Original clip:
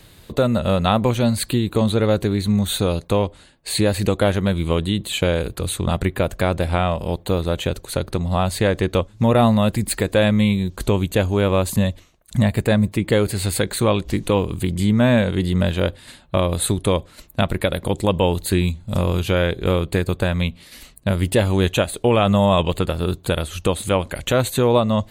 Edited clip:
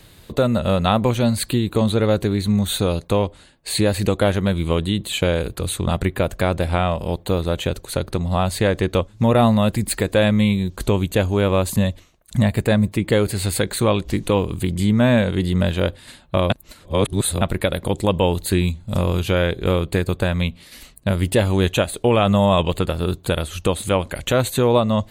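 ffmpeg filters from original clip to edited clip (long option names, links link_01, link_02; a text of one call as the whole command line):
ffmpeg -i in.wav -filter_complex "[0:a]asplit=3[link_01][link_02][link_03];[link_01]atrim=end=16.502[link_04];[link_02]atrim=start=16.498:end=17.412,asetpts=PTS-STARTPTS,areverse[link_05];[link_03]atrim=start=17.408[link_06];[link_04][link_05]acrossfade=duration=0.004:curve1=hsin:curve2=hsin[link_07];[link_07][link_06]acrossfade=duration=0.004:curve1=hsin:curve2=hsin" out.wav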